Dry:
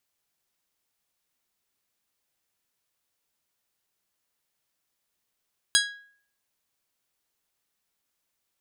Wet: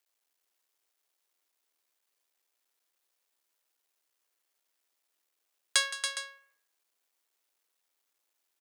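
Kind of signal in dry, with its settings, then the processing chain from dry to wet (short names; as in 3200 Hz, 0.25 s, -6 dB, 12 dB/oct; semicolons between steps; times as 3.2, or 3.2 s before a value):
glass hit bell, lowest mode 1650 Hz, modes 7, decay 0.55 s, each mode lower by 0 dB, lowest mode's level -21 dB
cycle switcher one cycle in 3, muted; HPF 310 Hz 24 dB/oct; on a send: tapped delay 0.168/0.281/0.412 s -14.5/-7/-12.5 dB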